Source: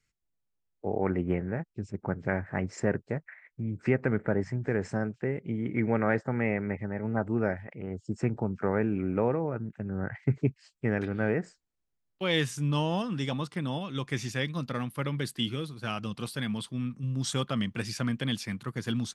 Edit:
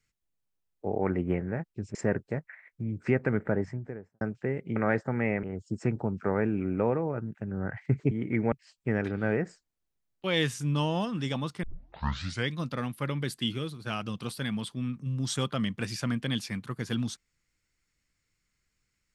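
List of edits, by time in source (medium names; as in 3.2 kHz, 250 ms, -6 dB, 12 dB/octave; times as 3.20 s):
1.95–2.74 s: delete
4.25–5.00 s: studio fade out
5.55–5.96 s: move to 10.49 s
6.63–7.81 s: delete
13.60 s: tape start 0.85 s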